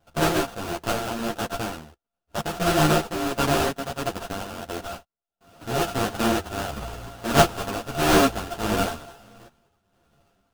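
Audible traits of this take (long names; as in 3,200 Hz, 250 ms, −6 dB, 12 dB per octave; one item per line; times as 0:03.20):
a buzz of ramps at a fixed pitch in blocks of 64 samples
tremolo triangle 1.5 Hz, depth 65%
aliases and images of a low sample rate 2,100 Hz, jitter 20%
a shimmering, thickened sound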